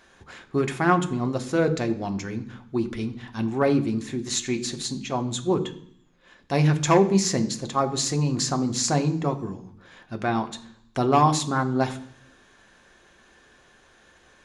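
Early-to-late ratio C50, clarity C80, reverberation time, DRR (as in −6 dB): 14.5 dB, 17.0 dB, 0.65 s, 6.0 dB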